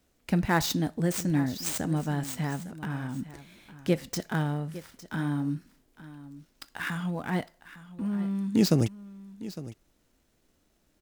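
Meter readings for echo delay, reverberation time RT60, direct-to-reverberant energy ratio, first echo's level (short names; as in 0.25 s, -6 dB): 0.857 s, none, none, -16.0 dB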